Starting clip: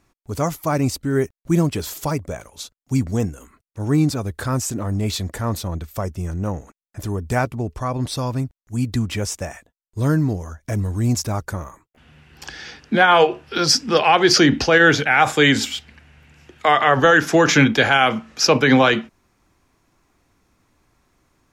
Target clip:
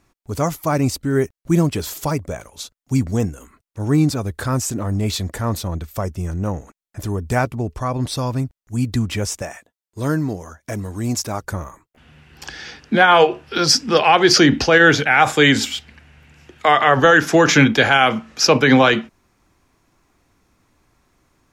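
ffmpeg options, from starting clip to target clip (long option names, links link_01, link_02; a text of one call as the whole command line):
ffmpeg -i in.wav -filter_complex "[0:a]asettb=1/sr,asplit=3[link_01][link_02][link_03];[link_01]atrim=end=9.424[link_04];[link_02]atrim=start=9.42:end=11.43,asetpts=PTS-STARTPTS,afade=type=in:duration=0.004:curve=qsin,afade=type=out:start_time=2.006:duration=0.004:curve=qsin,highpass=frequency=240:poles=1[link_05];[link_03]atrim=start=11.426[link_06];[link_04][link_05]acrossfade=duration=0.004:curve1=hsin:curve2=qsin[link_07];[link_07][link_06]acrossfade=duration=0.004:curve1=qsin:curve2=hsin,volume=1.5dB" out.wav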